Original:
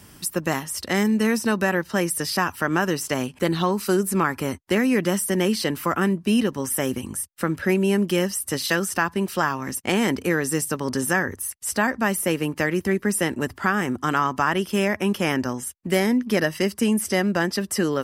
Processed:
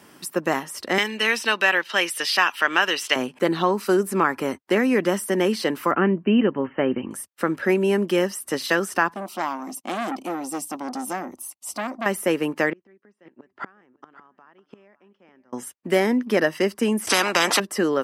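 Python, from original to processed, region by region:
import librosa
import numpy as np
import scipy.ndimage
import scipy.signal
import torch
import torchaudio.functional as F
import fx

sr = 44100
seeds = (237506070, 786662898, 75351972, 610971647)

y = fx.chain(x, sr, fx.highpass(hz=820.0, slope=6),
    fx.peak_eq(hz=3100.0, db=15.0, octaves=1.3), at=(0.98, 3.16))
y = fx.chain(y, sr, fx.cheby1_lowpass(hz=3100.0, order=10),
    fx.low_shelf(hz=230.0, db=7.5), at=(5.91, 7.11))
y = fx.chain(y, sr, fx.fixed_phaser(hz=450.0, stages=6),
    fx.transformer_sat(knee_hz=1600.0), at=(9.14, 12.06))
y = fx.chain(y, sr, fx.gate_flip(shuts_db=-18.0, range_db=-33),
    fx.air_absorb(metres=160.0),
    fx.echo_single(ms=551, db=-18.0), at=(12.7, 15.53))
y = fx.chain(y, sr, fx.lowpass(hz=11000.0, slope=12),
    fx.peak_eq(hz=280.0, db=12.0, octaves=2.9),
    fx.spectral_comp(ratio=10.0), at=(17.07, 17.6))
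y = scipy.signal.sosfilt(scipy.signal.butter(2, 280.0, 'highpass', fs=sr, output='sos'), y)
y = fx.high_shelf(y, sr, hz=3400.0, db=-10.5)
y = y * 10.0 ** (3.5 / 20.0)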